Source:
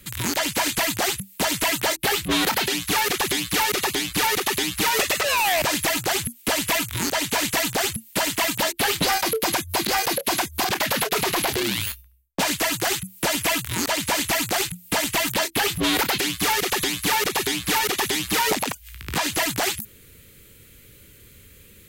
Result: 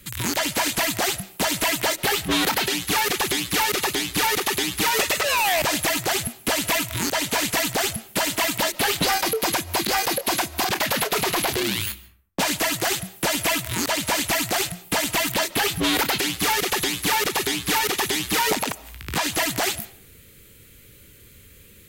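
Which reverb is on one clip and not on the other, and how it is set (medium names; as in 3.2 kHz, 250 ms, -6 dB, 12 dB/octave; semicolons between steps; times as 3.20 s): algorithmic reverb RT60 0.55 s, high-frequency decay 0.55×, pre-delay 100 ms, DRR 19 dB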